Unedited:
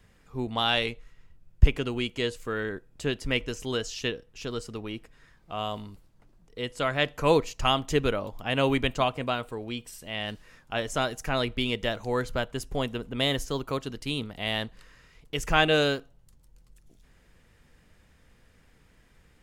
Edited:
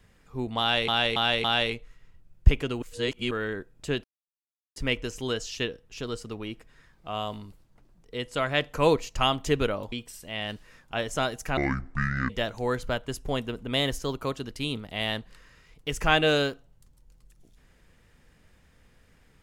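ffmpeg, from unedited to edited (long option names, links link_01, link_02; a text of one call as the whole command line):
ffmpeg -i in.wav -filter_complex "[0:a]asplit=10[link_01][link_02][link_03][link_04][link_05][link_06][link_07][link_08][link_09][link_10];[link_01]atrim=end=0.882[link_11];[link_02]atrim=start=0.598:end=0.882[link_12];[link_03]atrim=start=0.598:end=0.882[link_13];[link_04]atrim=start=0.598:end=1.982[link_14];[link_05]atrim=start=1.978:end=2.472,asetpts=PTS-STARTPTS,areverse[link_15];[link_06]atrim=start=2.468:end=3.2,asetpts=PTS-STARTPTS,afade=type=out:start_time=0.728:duration=0.004:curve=hsin,apad=pad_dur=0.72[link_16];[link_07]atrim=start=3.2:end=8.362,asetpts=PTS-STARTPTS,afade=type=in:duration=0.004:curve=hsin[link_17];[link_08]atrim=start=9.708:end=11.364[link_18];[link_09]atrim=start=11.36:end=11.76,asetpts=PTS-STARTPTS,asetrate=24255,aresample=44100[link_19];[link_10]atrim=start=11.756[link_20];[link_11][link_12]acrossfade=duration=0.004:curve1=hsin:curve2=hsin[link_21];[link_21][link_13]acrossfade=duration=0.004:curve1=hsin:curve2=hsin[link_22];[link_22][link_14]acrossfade=duration=0.004:curve1=hsin:curve2=hsin[link_23];[link_23][link_15]acrossfade=duration=0.004:curve1=hsin:curve2=hsin[link_24];[link_16][link_17]concat=n=2:v=0:a=1[link_25];[link_24][link_25]acrossfade=duration=0.004:curve1=hsin:curve2=hsin[link_26];[link_26][link_18]acrossfade=duration=0.004:curve1=hsin:curve2=hsin[link_27];[link_27][link_19]acrossfade=duration=0.004:curve1=hsin:curve2=hsin[link_28];[link_28][link_20]acrossfade=duration=0.004:curve1=hsin:curve2=hsin" out.wav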